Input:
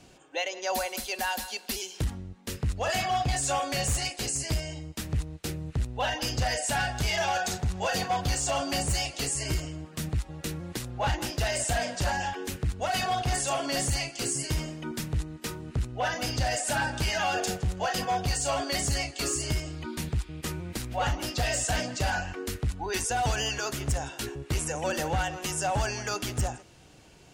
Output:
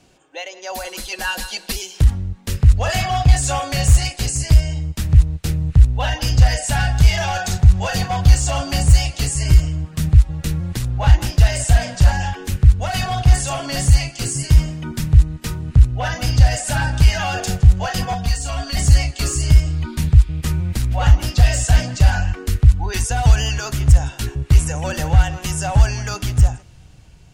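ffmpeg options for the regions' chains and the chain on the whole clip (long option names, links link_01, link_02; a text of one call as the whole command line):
ffmpeg -i in.wav -filter_complex "[0:a]asettb=1/sr,asplit=3[link_01][link_02][link_03];[link_01]atrim=end=0.844[link_04];[link_02]atrim=start=0.84:end=1.72,asetpts=PTS-STARTPTS,afade=type=in:duration=0.004:curve=qsin,afade=type=out:start_time=0.876:duration=0.004:curve=qsin,lowpass=12000,equalizer=frequency=220:width_type=o:width=2.8:gain=3.5,aecho=1:1:6.1:0.99,atrim=end_sample=38808[link_05];[link_03]atrim=start=1.716[link_06];[link_04][link_05]acrossfade=duration=0.004:curve1=hsin:curve2=qsin[link_07];[link_07][link_06]acrossfade=duration=0.004:curve1=qsin:curve2=hsin,asettb=1/sr,asplit=3[link_08][link_09][link_10];[link_08]atrim=end=18.134[link_11];[link_09]atrim=start=18.13:end=18.77,asetpts=PTS-STARTPTS,afade=type=in:duration=0.004:curve=qsin,afade=type=out:start_time=0.636:duration=0.004:curve=qsin,aecho=1:1:4.3:0.97,atrim=end_sample=28224,acrossover=split=210|660[link_12][link_13][link_14];[link_12]acompressor=threshold=-37dB:ratio=4[link_15];[link_13]acompressor=threshold=-44dB:ratio=4[link_16];[link_14]acompressor=threshold=-33dB:ratio=4[link_17];[link_15][link_16][link_17]amix=inputs=3:normalize=0[link_18];[link_10]atrim=start=18.766[link_19];[link_11][link_18]acrossfade=duration=0.004:curve1=hsin:curve2=qsin[link_20];[link_20][link_19]acrossfade=duration=0.004:curve1=qsin:curve2=hsin,asubboost=boost=6.5:cutoff=130,dynaudnorm=framelen=570:gausssize=5:maxgain=11.5dB" out.wav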